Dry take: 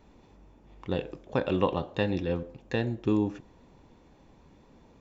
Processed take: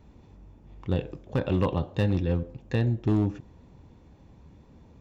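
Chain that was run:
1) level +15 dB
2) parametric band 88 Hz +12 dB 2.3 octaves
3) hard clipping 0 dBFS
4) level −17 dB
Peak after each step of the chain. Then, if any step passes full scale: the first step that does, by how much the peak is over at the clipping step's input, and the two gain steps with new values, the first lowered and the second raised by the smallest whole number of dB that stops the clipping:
+5.0, +6.0, 0.0, −17.0 dBFS
step 1, 6.0 dB
step 1 +9 dB, step 4 −11 dB

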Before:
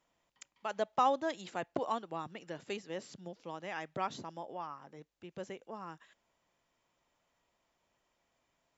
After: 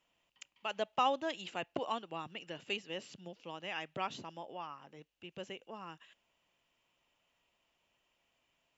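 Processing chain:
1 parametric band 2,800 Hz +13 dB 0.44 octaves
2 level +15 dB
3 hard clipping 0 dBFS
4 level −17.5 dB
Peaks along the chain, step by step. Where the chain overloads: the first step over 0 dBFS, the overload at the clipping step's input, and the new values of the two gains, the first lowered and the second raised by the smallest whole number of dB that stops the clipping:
−17.0, −2.0, −2.0, −19.5 dBFS
no step passes full scale

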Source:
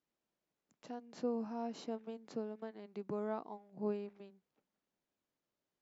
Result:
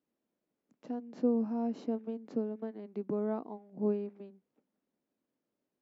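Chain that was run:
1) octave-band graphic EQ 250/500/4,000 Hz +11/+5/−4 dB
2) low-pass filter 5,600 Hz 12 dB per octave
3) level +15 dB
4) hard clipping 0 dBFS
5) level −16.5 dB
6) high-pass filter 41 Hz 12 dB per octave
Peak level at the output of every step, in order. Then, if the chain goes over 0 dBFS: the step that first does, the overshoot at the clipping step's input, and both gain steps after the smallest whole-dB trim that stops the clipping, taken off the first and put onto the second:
−17.5, −17.5, −2.5, −2.5, −19.0, −19.0 dBFS
no step passes full scale

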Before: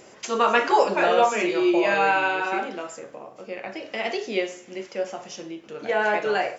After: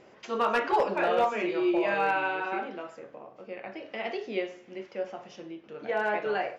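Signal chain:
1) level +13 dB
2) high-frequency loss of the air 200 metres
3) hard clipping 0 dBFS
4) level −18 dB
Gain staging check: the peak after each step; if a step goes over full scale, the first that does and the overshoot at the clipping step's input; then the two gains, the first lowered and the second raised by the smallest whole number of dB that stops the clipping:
+8.0, +6.5, 0.0, −18.0 dBFS
step 1, 6.5 dB
step 1 +6 dB, step 4 −11 dB

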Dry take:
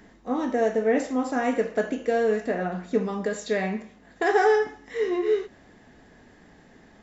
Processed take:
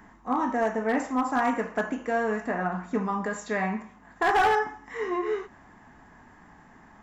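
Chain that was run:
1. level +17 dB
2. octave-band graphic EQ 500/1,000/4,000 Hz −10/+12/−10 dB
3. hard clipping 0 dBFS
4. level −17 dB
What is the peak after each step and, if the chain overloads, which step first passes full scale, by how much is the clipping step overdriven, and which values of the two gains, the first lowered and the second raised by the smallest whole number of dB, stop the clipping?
+8.0, +10.0, 0.0, −17.0 dBFS
step 1, 10.0 dB
step 1 +7 dB, step 4 −7 dB

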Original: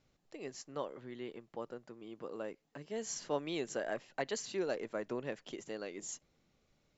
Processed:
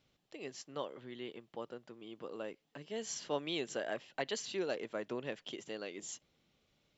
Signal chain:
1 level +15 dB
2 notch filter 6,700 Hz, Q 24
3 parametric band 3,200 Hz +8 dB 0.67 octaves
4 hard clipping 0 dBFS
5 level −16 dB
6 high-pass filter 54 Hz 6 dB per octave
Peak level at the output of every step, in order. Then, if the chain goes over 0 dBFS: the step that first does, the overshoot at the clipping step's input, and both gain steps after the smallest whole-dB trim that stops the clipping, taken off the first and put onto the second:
−6.0, −6.0, −4.5, −4.5, −20.5, −20.5 dBFS
no step passes full scale

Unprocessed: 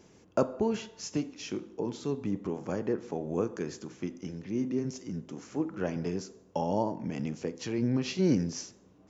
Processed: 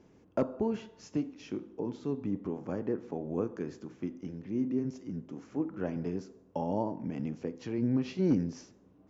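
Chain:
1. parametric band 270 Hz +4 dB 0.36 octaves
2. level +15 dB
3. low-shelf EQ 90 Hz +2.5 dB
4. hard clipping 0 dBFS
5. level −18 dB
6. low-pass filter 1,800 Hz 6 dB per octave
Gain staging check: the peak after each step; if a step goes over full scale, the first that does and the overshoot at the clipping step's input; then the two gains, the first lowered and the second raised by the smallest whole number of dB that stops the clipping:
−11.5, +3.5, +4.0, 0.0, −18.0, −18.0 dBFS
step 2, 4.0 dB
step 2 +11 dB, step 5 −14 dB

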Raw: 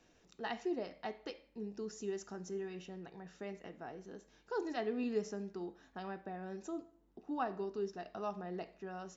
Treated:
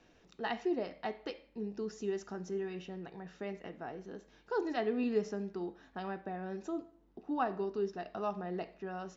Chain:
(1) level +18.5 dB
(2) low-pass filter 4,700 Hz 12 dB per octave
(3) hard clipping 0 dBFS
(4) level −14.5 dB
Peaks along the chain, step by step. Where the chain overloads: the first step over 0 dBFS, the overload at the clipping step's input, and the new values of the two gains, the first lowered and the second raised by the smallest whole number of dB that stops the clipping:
−5.5, −5.5, −5.5, −20.0 dBFS
no step passes full scale

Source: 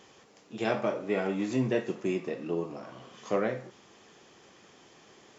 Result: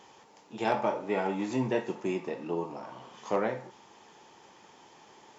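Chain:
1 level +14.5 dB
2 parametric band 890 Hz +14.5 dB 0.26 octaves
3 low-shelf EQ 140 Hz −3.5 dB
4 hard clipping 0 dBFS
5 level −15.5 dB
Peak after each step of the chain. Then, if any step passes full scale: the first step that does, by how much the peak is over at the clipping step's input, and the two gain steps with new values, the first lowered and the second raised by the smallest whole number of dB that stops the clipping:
+0.5, +3.0, +3.0, 0.0, −15.5 dBFS
step 1, 3.0 dB
step 1 +11.5 dB, step 5 −12.5 dB

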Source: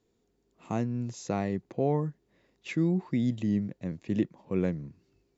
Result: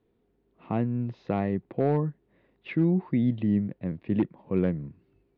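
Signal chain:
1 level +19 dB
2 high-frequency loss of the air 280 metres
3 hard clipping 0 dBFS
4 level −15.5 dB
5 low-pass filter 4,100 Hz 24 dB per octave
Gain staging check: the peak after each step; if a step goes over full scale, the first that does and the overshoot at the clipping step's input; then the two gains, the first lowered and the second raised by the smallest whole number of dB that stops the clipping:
+4.0, +3.5, 0.0, −15.5, −15.0 dBFS
step 1, 3.5 dB
step 1 +15 dB, step 4 −11.5 dB

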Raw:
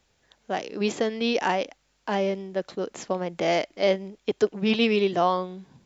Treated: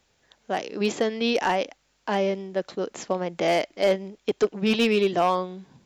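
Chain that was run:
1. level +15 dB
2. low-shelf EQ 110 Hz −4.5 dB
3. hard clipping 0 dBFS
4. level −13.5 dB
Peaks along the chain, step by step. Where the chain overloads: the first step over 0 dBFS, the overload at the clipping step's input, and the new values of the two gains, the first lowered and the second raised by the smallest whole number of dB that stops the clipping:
+5.5, +5.5, 0.0, −13.5 dBFS
step 1, 5.5 dB
step 1 +9 dB, step 4 −7.5 dB

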